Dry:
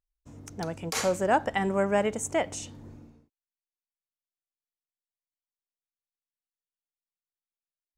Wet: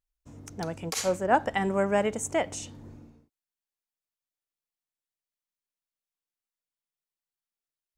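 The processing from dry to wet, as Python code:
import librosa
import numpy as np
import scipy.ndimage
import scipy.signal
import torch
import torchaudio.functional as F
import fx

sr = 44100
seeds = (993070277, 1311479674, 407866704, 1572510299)

y = fx.band_widen(x, sr, depth_pct=100, at=(0.94, 1.35))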